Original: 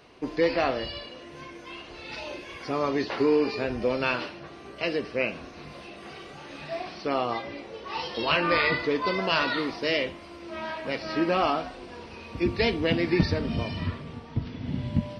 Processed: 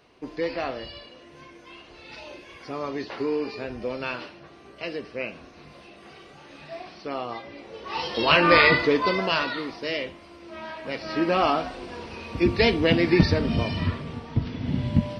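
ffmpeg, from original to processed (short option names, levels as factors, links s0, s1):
-af "volume=5.62,afade=t=in:st=7.52:d=1.08:silence=0.251189,afade=t=out:st=8.6:d=0.94:silence=0.298538,afade=t=in:st=10.74:d=1.04:silence=0.421697"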